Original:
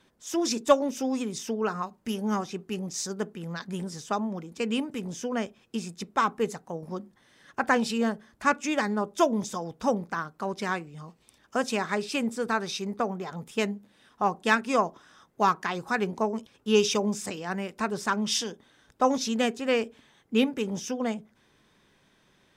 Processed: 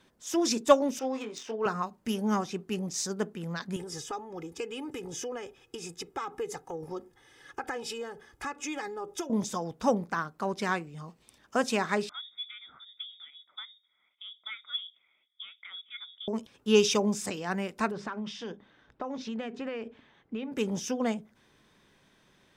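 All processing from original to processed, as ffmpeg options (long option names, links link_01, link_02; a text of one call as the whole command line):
ffmpeg -i in.wav -filter_complex "[0:a]asettb=1/sr,asplit=3[link_01][link_02][link_03];[link_01]atrim=end=0.994[link_04];[link_02]atrim=start=0.99:end=1.66,asetpts=PTS-STARTPTS,afade=type=in:duration=0.004:curve=qsin,afade=type=out:start_time=0.666:duration=0.004:curve=qsin,highpass=470,asplit=2[link_05][link_06];[link_06]adelay=23,volume=-5.5dB[link_07];[link_05][link_07]amix=inputs=2:normalize=0,atrim=end_sample=29547,adynamicsmooth=sensitivity=4:basefreq=3100[link_08];[link_03]atrim=start=1.656[link_09];[link_04][link_08]acrossfade=duration=0.004:curve1=hsin:curve2=qsin[link_10];[link_10][link_09]acrossfade=duration=0.004:curve1=qsin:curve2=hsin,asettb=1/sr,asplit=3[link_11][link_12][link_13];[link_11]atrim=end=3.764[link_14];[link_12]atrim=start=3.76:end=9.3,asetpts=PTS-STARTPTS,afade=type=in:duration=0.004:curve=qsin,afade=type=out:start_time=5.536:duration=0.004:curve=qsin,bandreject=frequency=4200:width=13,acompressor=threshold=-34dB:ratio=5:attack=3.2:release=140:knee=1:detection=peak,aecho=1:1:2.4:0.84,atrim=end_sample=244314[link_15];[link_13]atrim=start=9.296[link_16];[link_14][link_15]acrossfade=duration=0.004:curve1=hsin:curve2=qsin[link_17];[link_17][link_16]acrossfade=duration=0.004:curve1=qsin:curve2=hsin,asettb=1/sr,asplit=3[link_18][link_19][link_20];[link_18]atrim=end=12.094[link_21];[link_19]atrim=start=12.09:end=16.28,asetpts=PTS-STARTPTS,afade=type=in:duration=0.004:curve=qsin,afade=type=out:start_time=4.186:duration=0.004:curve=qsin,acompressor=threshold=-33dB:ratio=1.5:attack=3.2:release=140:knee=1:detection=peak,asplit=3[link_22][link_23][link_24];[link_22]bandpass=frequency=530:width_type=q:width=8,volume=0dB[link_25];[link_23]bandpass=frequency=1840:width_type=q:width=8,volume=-6dB[link_26];[link_24]bandpass=frequency=2480:width_type=q:width=8,volume=-9dB[link_27];[link_25][link_26][link_27]amix=inputs=3:normalize=0,lowpass=frequency=3300:width_type=q:width=0.5098,lowpass=frequency=3300:width_type=q:width=0.6013,lowpass=frequency=3300:width_type=q:width=0.9,lowpass=frequency=3300:width_type=q:width=2.563,afreqshift=-3900[link_28];[link_20]atrim=start=16.276[link_29];[link_21][link_28]acrossfade=duration=0.004:curve1=hsin:curve2=qsin[link_30];[link_30][link_29]acrossfade=duration=0.004:curve1=qsin:curve2=hsin,asettb=1/sr,asplit=3[link_31][link_32][link_33];[link_31]atrim=end=17.914[link_34];[link_32]atrim=start=17.91:end=20.52,asetpts=PTS-STARTPTS,afade=type=in:duration=0.004:curve=qsin,afade=type=out:start_time=2.606:duration=0.004:curve=qsin,bandreject=frequency=50:width_type=h:width=6,bandreject=frequency=100:width_type=h:width=6,bandreject=frequency=150:width_type=h:width=6,bandreject=frequency=200:width_type=h:width=6,bandreject=frequency=250:width_type=h:width=6,acompressor=threshold=-31dB:ratio=12:attack=3.2:release=140:knee=1:detection=peak,lowpass=3000[link_35];[link_33]atrim=start=20.516[link_36];[link_34][link_35]acrossfade=duration=0.004:curve1=hsin:curve2=qsin[link_37];[link_37][link_36]acrossfade=duration=0.004:curve1=qsin:curve2=hsin" out.wav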